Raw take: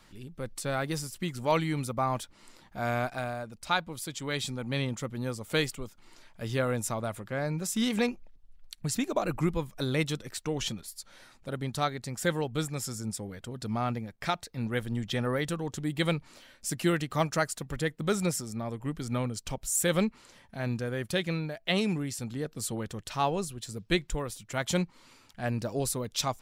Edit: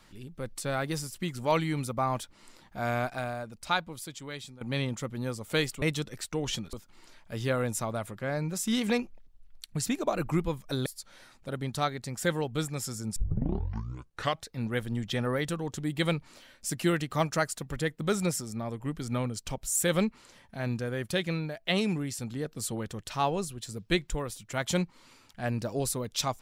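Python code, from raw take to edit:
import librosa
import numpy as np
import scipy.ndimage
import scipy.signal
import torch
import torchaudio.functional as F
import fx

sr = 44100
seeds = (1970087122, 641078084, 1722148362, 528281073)

y = fx.edit(x, sr, fx.fade_out_to(start_s=3.71, length_s=0.9, floor_db=-16.5),
    fx.move(start_s=9.95, length_s=0.91, to_s=5.82),
    fx.tape_start(start_s=13.16, length_s=1.34), tone=tone)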